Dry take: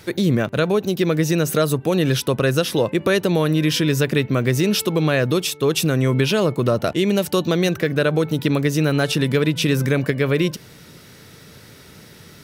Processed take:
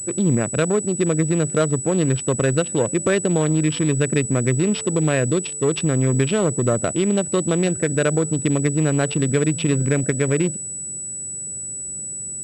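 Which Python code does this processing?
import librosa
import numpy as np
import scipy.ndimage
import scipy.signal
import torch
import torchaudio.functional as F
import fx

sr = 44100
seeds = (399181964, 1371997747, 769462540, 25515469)

y = fx.wiener(x, sr, points=41)
y = fx.pwm(y, sr, carrier_hz=7900.0)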